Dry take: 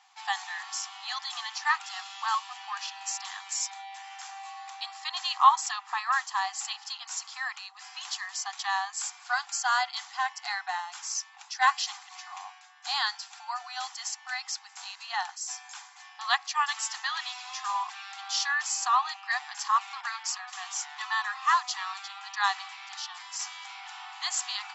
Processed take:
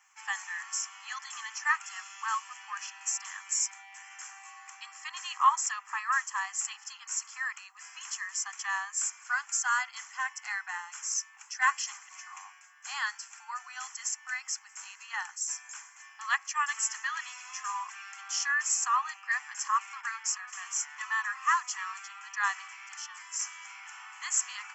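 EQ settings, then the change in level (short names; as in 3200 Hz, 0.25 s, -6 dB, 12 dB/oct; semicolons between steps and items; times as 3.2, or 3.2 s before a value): high shelf 3300 Hz +10.5 dB; fixed phaser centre 1600 Hz, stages 4; notch 4700 Hz, Q 6.6; -2.0 dB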